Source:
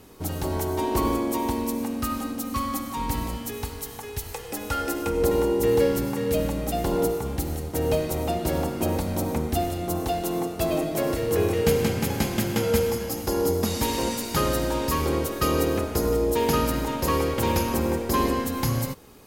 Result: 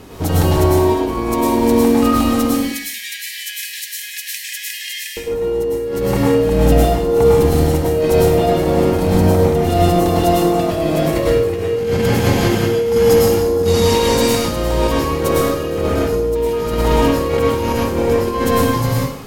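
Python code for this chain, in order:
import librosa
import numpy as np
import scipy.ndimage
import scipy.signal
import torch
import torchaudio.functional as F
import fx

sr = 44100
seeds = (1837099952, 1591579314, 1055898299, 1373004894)

y = fx.high_shelf(x, sr, hz=7500.0, db=-9.0)
y = fx.over_compress(y, sr, threshold_db=-28.0, ratio=-0.5)
y = fx.brickwall_highpass(y, sr, low_hz=1600.0, at=(2.53, 5.17))
y = fx.rev_plate(y, sr, seeds[0], rt60_s=0.59, hf_ratio=0.95, predelay_ms=90, drr_db=-3.5)
y = y * librosa.db_to_amplitude(8.0)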